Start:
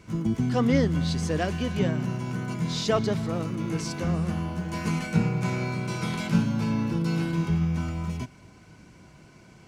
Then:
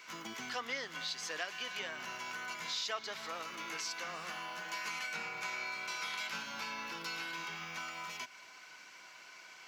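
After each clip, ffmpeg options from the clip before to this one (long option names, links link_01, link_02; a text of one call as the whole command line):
ffmpeg -i in.wav -af "highpass=1300,equalizer=frequency=9100:width=2.7:gain=-15,acompressor=threshold=-48dB:ratio=2.5,volume=7dB" out.wav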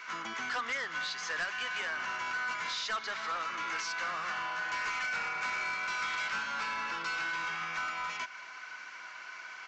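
ffmpeg -i in.wav -af "equalizer=frequency=1400:width_type=o:width=1.6:gain=12.5,aresample=16000,asoftclip=type=tanh:threshold=-29dB,aresample=44100" out.wav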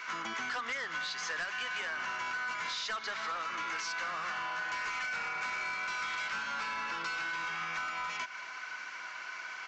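ffmpeg -i in.wav -af "acompressor=threshold=-37dB:ratio=6,volume=3dB" out.wav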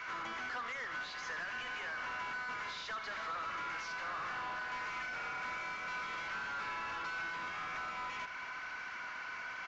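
ffmpeg -i in.wav -filter_complex "[0:a]asplit=2[link_01][link_02];[link_02]highpass=frequency=720:poles=1,volume=17dB,asoftclip=type=tanh:threshold=-27.5dB[link_03];[link_01][link_03]amix=inputs=2:normalize=0,lowpass=frequency=1600:poles=1,volume=-6dB,aecho=1:1:79:0.282,aresample=16000,aresample=44100,volume=-5.5dB" out.wav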